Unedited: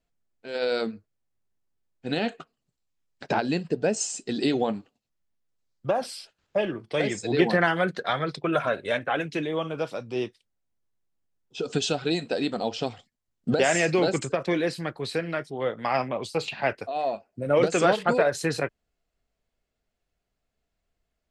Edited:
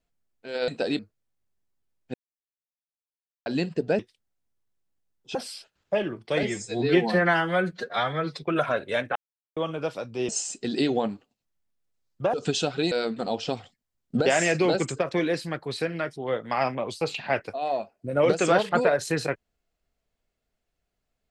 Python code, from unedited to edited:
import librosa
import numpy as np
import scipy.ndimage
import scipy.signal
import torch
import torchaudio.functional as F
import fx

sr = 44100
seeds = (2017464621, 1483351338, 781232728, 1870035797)

y = fx.edit(x, sr, fx.swap(start_s=0.68, length_s=0.25, other_s=12.19, other_length_s=0.31),
    fx.silence(start_s=2.08, length_s=1.32),
    fx.swap(start_s=3.93, length_s=2.05, other_s=10.25, other_length_s=1.36),
    fx.stretch_span(start_s=7.06, length_s=1.33, factor=1.5),
    fx.silence(start_s=9.12, length_s=0.41), tone=tone)